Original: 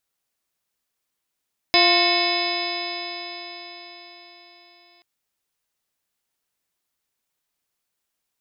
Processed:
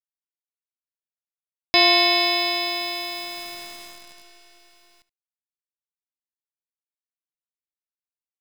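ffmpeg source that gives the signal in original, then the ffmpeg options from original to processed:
-f lavfi -i "aevalsrc='0.075*pow(10,-3*t/4.74)*sin(2*PI*346.57*t)+0.106*pow(10,-3*t/4.74)*sin(2*PI*696.55*t)+0.0562*pow(10,-3*t/4.74)*sin(2*PI*1053.3*t)+0.0106*pow(10,-3*t/4.74)*sin(2*PI*1420.07*t)+0.0376*pow(10,-3*t/4.74)*sin(2*PI*1799.95*t)+0.106*pow(10,-3*t/4.74)*sin(2*PI*2195.85*t)+0.0631*pow(10,-3*t/4.74)*sin(2*PI*2610.48*t)+0.0299*pow(10,-3*t/4.74)*sin(2*PI*3046.31*t)+0.0668*pow(10,-3*t/4.74)*sin(2*PI*3505.57*t)+0.0794*pow(10,-3*t/4.74)*sin(2*PI*3990.27*t)+0.02*pow(10,-3*t/4.74)*sin(2*PI*4502.19*t)+0.133*pow(10,-3*t/4.74)*sin(2*PI*5042.93*t)':d=3.28:s=44100"
-af "adynamicequalizer=threshold=0.0112:dfrequency=3000:dqfactor=3.3:tfrequency=3000:tqfactor=3.3:attack=5:release=100:ratio=0.375:range=2:mode=boostabove:tftype=bell,acrusher=bits=7:dc=4:mix=0:aa=0.000001,aecho=1:1:73:0.126"

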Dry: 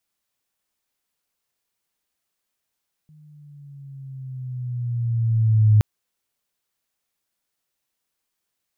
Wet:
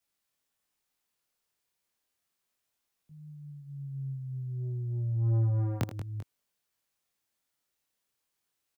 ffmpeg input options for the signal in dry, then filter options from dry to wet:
-f lavfi -i "aevalsrc='pow(10,(-10+37*(t/2.72-1))/20)*sin(2*PI*154*2.72/(-6.5*log(2)/12)*(exp(-6.5*log(2)/12*t/2.72)-1))':d=2.72:s=44100"
-filter_complex "[0:a]aecho=1:1:80|183|392:0.266|0.251|0.133,acrossover=split=160|470[a][b][c];[a]asoftclip=type=tanh:threshold=-29.5dB[d];[d][b][c]amix=inputs=3:normalize=0,flanger=delay=19.5:depth=7.9:speed=0.3"

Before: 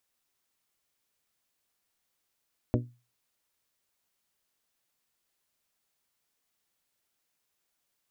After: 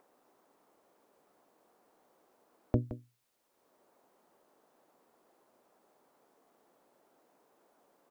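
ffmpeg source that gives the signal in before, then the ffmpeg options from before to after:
-f lavfi -i "aevalsrc='0.0794*pow(10,-3*t/0.33)*sin(2*PI*121*t)+0.0668*pow(10,-3*t/0.203)*sin(2*PI*242*t)+0.0562*pow(10,-3*t/0.179)*sin(2*PI*290.4*t)+0.0473*pow(10,-3*t/0.153)*sin(2*PI*363*t)+0.0398*pow(10,-3*t/0.125)*sin(2*PI*484*t)+0.0335*pow(10,-3*t/0.107)*sin(2*PI*605*t)':d=0.89:s=44100"
-filter_complex "[0:a]asplit=2[a][b];[b]adelay=169.1,volume=-13dB,highshelf=f=4k:g=-3.8[c];[a][c]amix=inputs=2:normalize=0,acrossover=split=230|1000[d][e][f];[e]acompressor=mode=upward:threshold=-49dB:ratio=2.5[g];[d][g][f]amix=inputs=3:normalize=0"

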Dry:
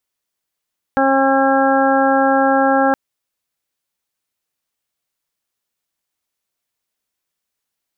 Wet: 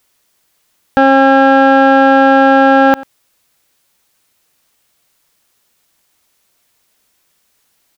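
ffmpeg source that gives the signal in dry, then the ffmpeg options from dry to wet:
-f lavfi -i "aevalsrc='0.141*sin(2*PI*270*t)+0.15*sin(2*PI*540*t)+0.168*sin(2*PI*810*t)+0.0473*sin(2*PI*1080*t)+0.0841*sin(2*PI*1350*t)+0.0841*sin(2*PI*1620*t)':d=1.97:s=44100"
-filter_complex "[0:a]acontrast=66,asplit=2[a][b];[b]adelay=93.29,volume=-30dB,highshelf=f=4k:g=-2.1[c];[a][c]amix=inputs=2:normalize=0,alimiter=level_in=12.5dB:limit=-1dB:release=50:level=0:latency=1"

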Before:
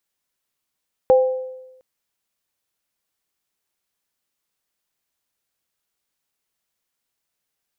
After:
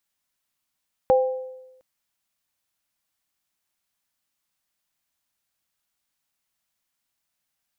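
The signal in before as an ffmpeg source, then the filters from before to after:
-f lavfi -i "aevalsrc='0.398*pow(10,-3*t/1.02)*sin(2*PI*515*t)+0.126*pow(10,-3*t/0.64)*sin(2*PI*798*t)':d=0.71:s=44100"
-af "equalizer=f=430:t=o:w=0.43:g=-11"

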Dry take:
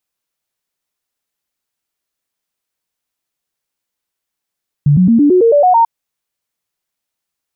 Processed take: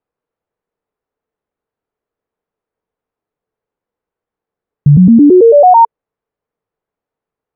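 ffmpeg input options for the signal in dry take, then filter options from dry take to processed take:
-f lavfi -i "aevalsrc='0.531*clip(min(mod(t,0.11),0.11-mod(t,0.11))/0.005,0,1)*sin(2*PI*145*pow(2,floor(t/0.11)/3)*mod(t,0.11))':d=0.99:s=44100"
-af "lowpass=1.1k,equalizer=f=450:w=4.8:g=9.5,alimiter=level_in=6dB:limit=-1dB:release=50:level=0:latency=1"

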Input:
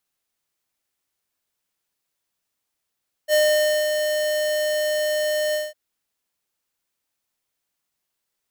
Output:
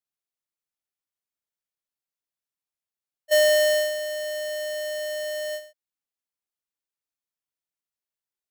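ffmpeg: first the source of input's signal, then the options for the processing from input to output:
-f lavfi -i "aevalsrc='0.15*(2*lt(mod(608*t,1),0.5)-1)':d=2.454:s=44100,afade=t=in:d=0.054,afade=t=out:st=0.054:d=0.54:silence=0.501,afade=t=out:st=2.26:d=0.194"
-af "agate=range=-15dB:threshold=-24dB:ratio=16:detection=peak"

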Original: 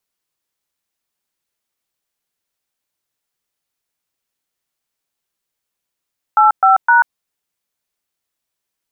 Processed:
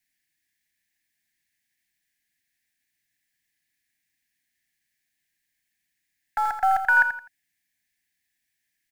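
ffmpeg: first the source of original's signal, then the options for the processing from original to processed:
-f lavfi -i "aevalsrc='0.335*clip(min(mod(t,0.257),0.138-mod(t,0.257))/0.002,0,1)*(eq(floor(t/0.257),0)*(sin(2*PI*852*mod(t,0.257))+sin(2*PI*1336*mod(t,0.257)))+eq(floor(t/0.257),1)*(sin(2*PI*770*mod(t,0.257))+sin(2*PI*1336*mod(t,0.257)))+eq(floor(t/0.257),2)*(sin(2*PI*941*mod(t,0.257))+sin(2*PI*1477*mod(t,0.257))))':d=0.771:s=44100"
-filter_complex "[0:a]firequalizer=gain_entry='entry(310,0);entry(500,-29);entry(720,-3);entry(1200,-28);entry(1700,13);entry(2900,0)':delay=0.05:min_phase=1,acrossover=split=850|880[a][b][c];[b]acrusher=bits=4:dc=4:mix=0:aa=0.000001[d];[a][d][c]amix=inputs=3:normalize=0,aecho=1:1:84|168|252:0.355|0.106|0.0319"

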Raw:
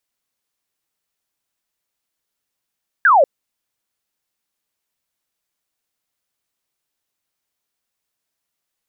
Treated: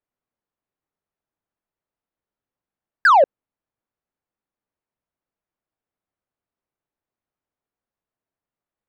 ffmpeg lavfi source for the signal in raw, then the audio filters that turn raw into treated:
-f lavfi -i "aevalsrc='0.398*clip(t/0.002,0,1)*clip((0.19-t)/0.002,0,1)*sin(2*PI*1700*0.19/log(510/1700)*(exp(log(510/1700)*t/0.19)-1))':d=0.19:s=44100"
-af "adynamicsmooth=sensitivity=0.5:basefreq=1.4k"

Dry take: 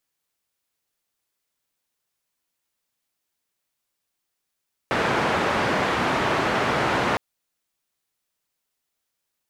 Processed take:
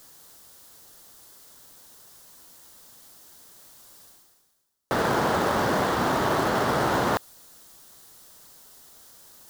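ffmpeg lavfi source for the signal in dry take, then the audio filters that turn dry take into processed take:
-f lavfi -i "anoisesrc=c=white:d=2.26:r=44100:seed=1,highpass=f=98,lowpass=f=1400,volume=-5.9dB"
-af "equalizer=f=2.4k:w=2:g=-12,areverse,acompressor=mode=upward:threshold=-27dB:ratio=2.5,areverse,acrusher=bits=4:mode=log:mix=0:aa=0.000001"

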